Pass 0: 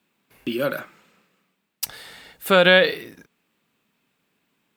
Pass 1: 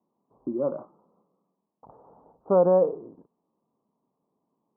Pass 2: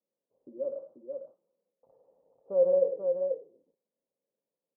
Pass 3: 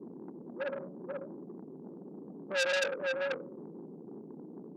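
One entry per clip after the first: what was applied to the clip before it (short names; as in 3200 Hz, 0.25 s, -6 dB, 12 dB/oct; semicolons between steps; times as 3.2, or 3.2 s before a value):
steep low-pass 1100 Hz 72 dB/oct; low shelf 120 Hz -11.5 dB; gain -1.5 dB
flange 0.95 Hz, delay 3.2 ms, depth 9.9 ms, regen -52%; vocal tract filter e; tapped delay 0.103/0.487 s -8.5/-5 dB; gain +1 dB
band noise 160–420 Hz -46 dBFS; on a send at -21 dB: reverb RT60 1.3 s, pre-delay 3 ms; on the sum: core saturation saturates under 3700 Hz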